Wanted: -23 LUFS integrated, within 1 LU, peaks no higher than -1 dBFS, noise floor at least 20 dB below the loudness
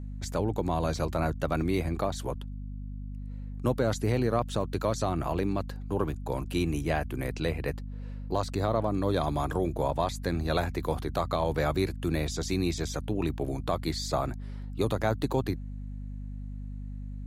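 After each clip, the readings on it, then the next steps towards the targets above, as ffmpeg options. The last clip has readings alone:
hum 50 Hz; harmonics up to 250 Hz; hum level -35 dBFS; loudness -30.5 LUFS; peak -14.5 dBFS; loudness target -23.0 LUFS
-> -af "bandreject=f=50:t=h:w=6,bandreject=f=100:t=h:w=6,bandreject=f=150:t=h:w=6,bandreject=f=200:t=h:w=6,bandreject=f=250:t=h:w=6"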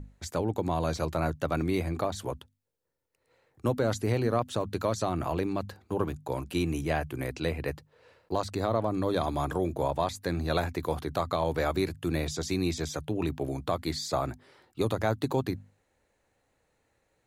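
hum none; loudness -31.0 LUFS; peak -14.5 dBFS; loudness target -23.0 LUFS
-> -af "volume=8dB"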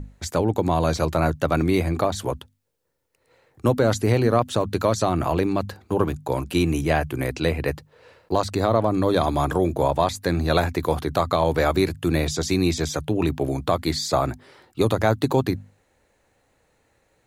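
loudness -23.0 LUFS; peak -6.5 dBFS; noise floor -66 dBFS

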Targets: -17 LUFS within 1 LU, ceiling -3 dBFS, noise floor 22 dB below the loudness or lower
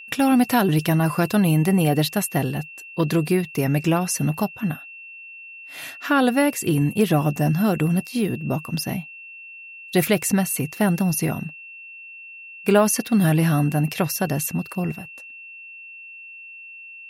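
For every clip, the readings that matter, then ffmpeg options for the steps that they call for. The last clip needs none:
steady tone 2700 Hz; tone level -38 dBFS; loudness -21.5 LUFS; peak -4.5 dBFS; loudness target -17.0 LUFS
-> -af "bandreject=f=2.7k:w=30"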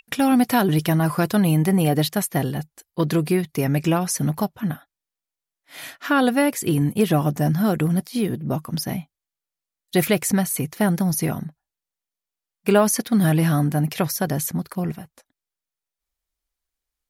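steady tone none; loudness -21.5 LUFS; peak -4.0 dBFS; loudness target -17.0 LUFS
-> -af "volume=4.5dB,alimiter=limit=-3dB:level=0:latency=1"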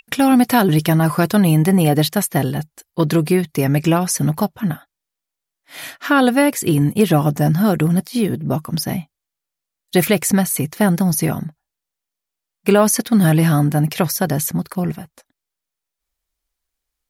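loudness -17.0 LUFS; peak -3.0 dBFS; noise floor -83 dBFS

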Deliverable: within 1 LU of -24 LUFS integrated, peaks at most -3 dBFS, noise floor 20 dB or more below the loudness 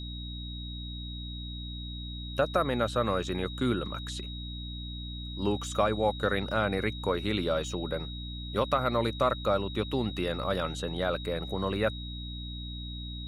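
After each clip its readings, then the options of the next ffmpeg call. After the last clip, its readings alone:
hum 60 Hz; harmonics up to 300 Hz; hum level -37 dBFS; steady tone 3800 Hz; tone level -42 dBFS; loudness -31.5 LUFS; peak -12.5 dBFS; loudness target -24.0 LUFS
-> -af "bandreject=f=60:t=h:w=6,bandreject=f=120:t=h:w=6,bandreject=f=180:t=h:w=6,bandreject=f=240:t=h:w=6,bandreject=f=300:t=h:w=6"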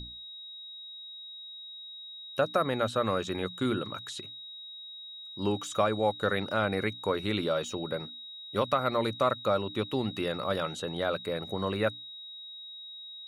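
hum none; steady tone 3800 Hz; tone level -42 dBFS
-> -af "bandreject=f=3.8k:w=30"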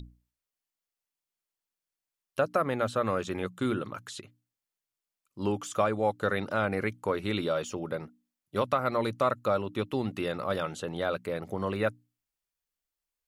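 steady tone none; loudness -31.0 LUFS; peak -13.0 dBFS; loudness target -24.0 LUFS
-> -af "volume=7dB"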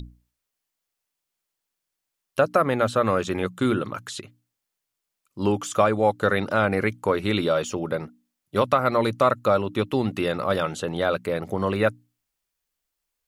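loudness -24.0 LUFS; peak -6.0 dBFS; noise floor -83 dBFS

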